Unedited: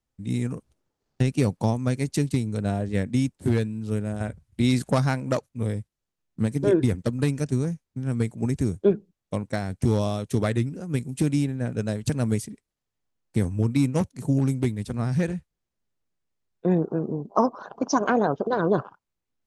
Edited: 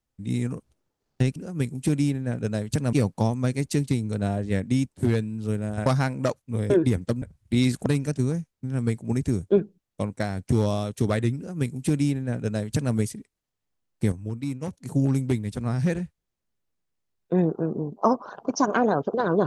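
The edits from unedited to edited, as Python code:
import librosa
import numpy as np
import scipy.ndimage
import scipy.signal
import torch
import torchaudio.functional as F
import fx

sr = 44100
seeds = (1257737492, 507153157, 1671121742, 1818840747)

y = fx.edit(x, sr, fx.move(start_s=4.29, length_s=0.64, to_s=7.19),
    fx.cut(start_s=5.77, length_s=0.9),
    fx.duplicate(start_s=10.7, length_s=1.57, to_s=1.36),
    fx.clip_gain(start_s=13.45, length_s=0.61, db=-8.5), tone=tone)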